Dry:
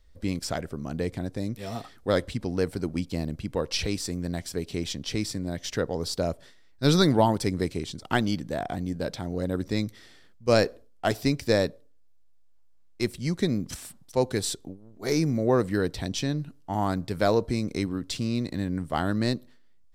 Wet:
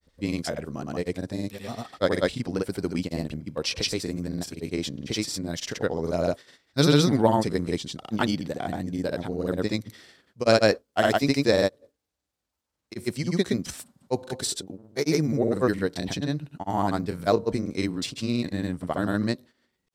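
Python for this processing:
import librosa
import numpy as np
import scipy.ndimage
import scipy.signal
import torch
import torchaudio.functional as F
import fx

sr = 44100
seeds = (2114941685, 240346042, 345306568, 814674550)

y = fx.highpass(x, sr, hz=140.0, slope=6)
y = fx.granulator(y, sr, seeds[0], grain_ms=100.0, per_s=20.0, spray_ms=100.0, spread_st=0)
y = y * 10.0 ** (3.5 / 20.0)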